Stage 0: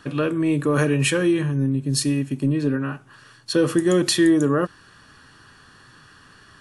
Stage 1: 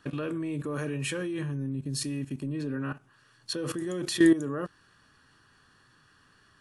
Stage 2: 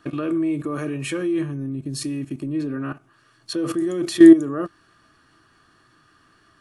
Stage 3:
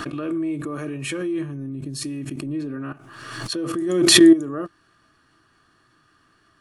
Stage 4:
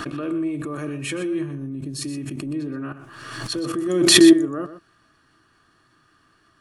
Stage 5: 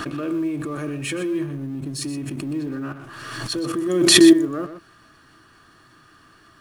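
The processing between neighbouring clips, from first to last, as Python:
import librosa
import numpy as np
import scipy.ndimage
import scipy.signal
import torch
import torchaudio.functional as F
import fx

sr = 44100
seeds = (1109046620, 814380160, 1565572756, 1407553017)

y1 = fx.level_steps(x, sr, step_db=15)
y1 = F.gain(torch.from_numpy(y1), -2.0).numpy()
y2 = fx.small_body(y1, sr, hz=(330.0, 660.0, 1200.0, 2200.0), ring_ms=45, db=10)
y2 = F.gain(torch.from_numpy(y2), 2.0).numpy()
y3 = fx.pre_swell(y2, sr, db_per_s=41.0)
y3 = F.gain(torch.from_numpy(y3), -3.0).numpy()
y4 = y3 + 10.0 ** (-12.0 / 20.0) * np.pad(y3, (int(123 * sr / 1000.0), 0))[:len(y3)]
y5 = fx.law_mismatch(y4, sr, coded='mu')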